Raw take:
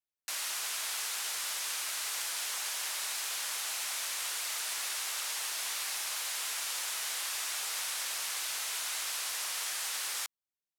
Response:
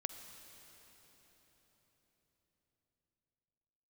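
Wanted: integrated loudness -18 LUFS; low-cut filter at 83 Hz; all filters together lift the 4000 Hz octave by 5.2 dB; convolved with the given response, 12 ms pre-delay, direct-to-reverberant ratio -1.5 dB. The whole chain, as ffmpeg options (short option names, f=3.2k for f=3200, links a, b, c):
-filter_complex "[0:a]highpass=83,equalizer=f=4k:t=o:g=6.5,asplit=2[a][b];[1:a]atrim=start_sample=2205,adelay=12[c];[b][c]afir=irnorm=-1:irlink=0,volume=2.5dB[d];[a][d]amix=inputs=2:normalize=0,volume=8.5dB"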